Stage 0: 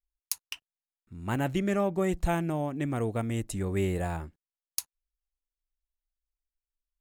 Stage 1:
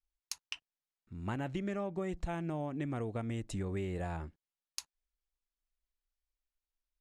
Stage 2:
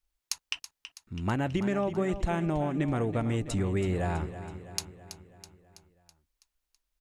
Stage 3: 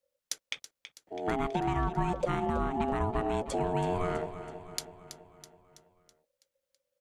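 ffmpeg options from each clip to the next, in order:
-af "lowpass=6.1k,acompressor=threshold=-32dB:ratio=6,volume=-1.5dB"
-af "aecho=1:1:327|654|981|1308|1635|1962:0.251|0.141|0.0788|0.0441|0.0247|0.0138,volume=8dB"
-af "aeval=exprs='val(0)*sin(2*PI*540*n/s)':c=same,lowshelf=f=160:g=6.5"

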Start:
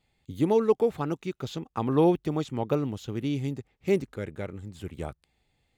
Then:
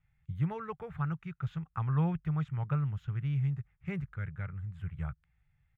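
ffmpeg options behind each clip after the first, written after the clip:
-af "firequalizer=gain_entry='entry(160,0);entry(240,-28);entry(1400,-2);entry(4300,-28)':delay=0.05:min_phase=1,volume=3dB"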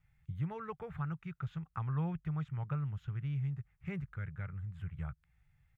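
-af "acompressor=threshold=-48dB:ratio=1.5,volume=2dB"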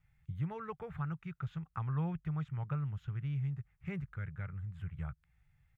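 -af anull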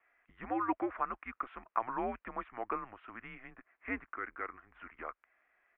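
-af "highpass=f=390:t=q:w=0.5412,highpass=f=390:t=q:w=1.307,lowpass=f=2.6k:t=q:w=0.5176,lowpass=f=2.6k:t=q:w=0.7071,lowpass=f=2.6k:t=q:w=1.932,afreqshift=-120,volume=11dB" -ar 32000 -c:a libvorbis -b:a 128k

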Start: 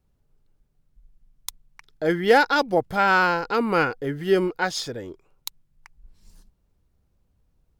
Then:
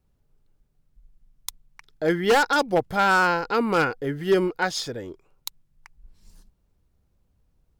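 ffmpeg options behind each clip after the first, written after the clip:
-af "aeval=exprs='0.266*(abs(mod(val(0)/0.266+3,4)-2)-1)':c=same"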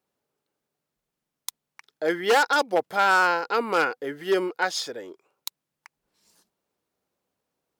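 -af "highpass=380"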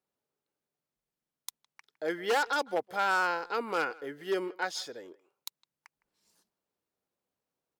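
-filter_complex "[0:a]asplit=2[a][b];[b]adelay=160,highpass=300,lowpass=3.4k,asoftclip=type=hard:threshold=-17.5dB,volume=-21dB[c];[a][c]amix=inputs=2:normalize=0,volume=-8dB"

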